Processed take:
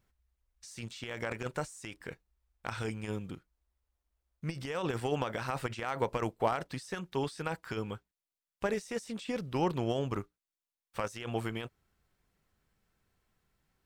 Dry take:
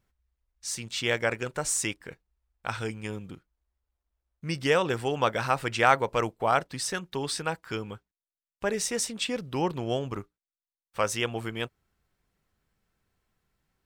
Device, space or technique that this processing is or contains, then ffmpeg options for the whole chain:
de-esser from a sidechain: -filter_complex "[0:a]asplit=2[a][b];[b]highpass=4.3k,apad=whole_len=610956[c];[a][c]sidechaincompress=threshold=-46dB:ratio=20:attack=0.89:release=34"

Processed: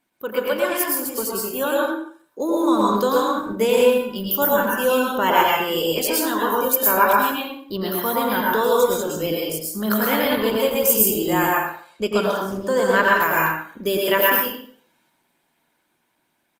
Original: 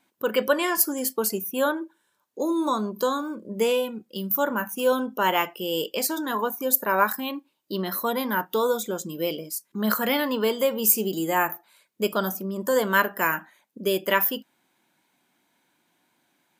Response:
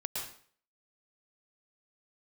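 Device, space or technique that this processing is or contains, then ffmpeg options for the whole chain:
speakerphone in a meeting room: -filter_complex "[0:a]asettb=1/sr,asplit=3[a][b][c];[a]atrim=end=11.494[d];[b]atrim=start=11.49:end=13.2,asetpts=PTS-STARTPTS,afade=t=in:d=0.004:c=qsin,afade=t=out:st=1.706:d=0.004:c=qsin,lowpass=8k[e];[c]atrim=start=13.196[f];[d][e]acrossfade=d=0.004:c1=hsin:c2=qsin[g];[g][f]acrossfade=d=0.004:c1=qsin:c2=hsin[h];[1:a]atrim=start_sample=2205[i];[h][i]afir=irnorm=-1:irlink=0,asplit=2[j][k];[k]adelay=90,highpass=300,lowpass=3.4k,asoftclip=type=hard:threshold=-15dB,volume=-7dB[l];[j][l]amix=inputs=2:normalize=0,dynaudnorm=f=120:g=31:m=14dB,volume=-1.5dB" -ar 48000 -c:a libopus -b:a 24k

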